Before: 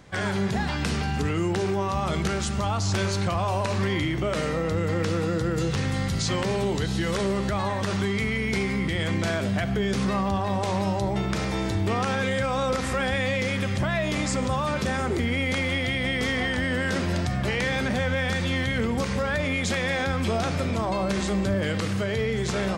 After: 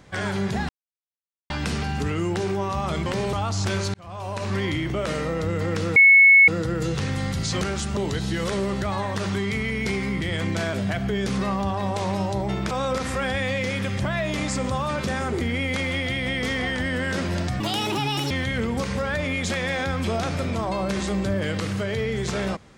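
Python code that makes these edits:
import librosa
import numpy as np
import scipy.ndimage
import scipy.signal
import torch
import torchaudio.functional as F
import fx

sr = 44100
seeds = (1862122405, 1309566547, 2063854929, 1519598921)

y = fx.edit(x, sr, fx.insert_silence(at_s=0.69, length_s=0.81),
    fx.swap(start_s=2.25, length_s=0.36, other_s=6.37, other_length_s=0.27),
    fx.fade_in_span(start_s=3.22, length_s=0.65),
    fx.insert_tone(at_s=5.24, length_s=0.52, hz=2200.0, db=-9.0),
    fx.cut(start_s=11.38, length_s=1.11),
    fx.speed_span(start_s=17.38, length_s=1.13, speed=1.6), tone=tone)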